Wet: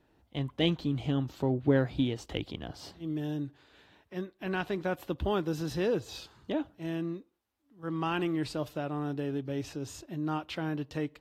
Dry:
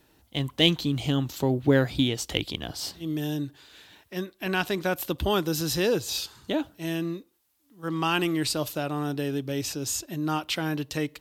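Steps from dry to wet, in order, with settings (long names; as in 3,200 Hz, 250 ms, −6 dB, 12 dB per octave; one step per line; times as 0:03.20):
low-pass filter 1,400 Hz 6 dB per octave
level −4 dB
AAC 48 kbit/s 44,100 Hz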